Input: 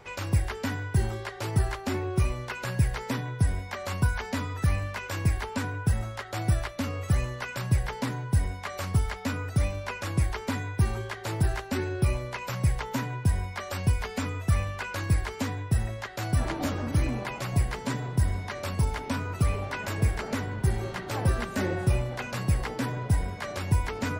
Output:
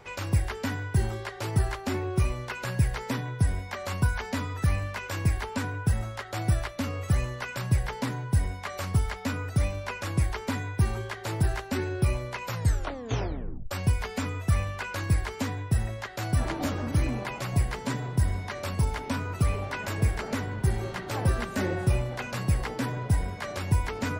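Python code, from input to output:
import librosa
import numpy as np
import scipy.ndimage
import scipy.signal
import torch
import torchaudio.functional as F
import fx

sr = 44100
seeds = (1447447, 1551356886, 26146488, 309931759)

y = fx.edit(x, sr, fx.tape_stop(start_s=12.47, length_s=1.24), tone=tone)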